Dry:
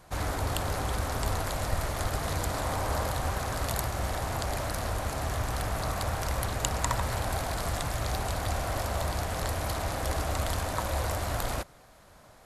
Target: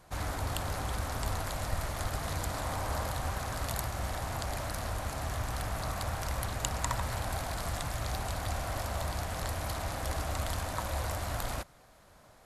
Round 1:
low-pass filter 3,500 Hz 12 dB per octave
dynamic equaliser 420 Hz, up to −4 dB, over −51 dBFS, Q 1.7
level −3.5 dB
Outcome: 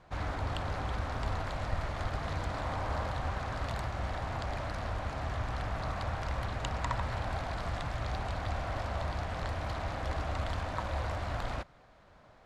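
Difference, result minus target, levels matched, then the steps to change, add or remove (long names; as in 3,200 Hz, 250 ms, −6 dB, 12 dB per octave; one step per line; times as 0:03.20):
4,000 Hz band −3.0 dB
remove: low-pass filter 3,500 Hz 12 dB per octave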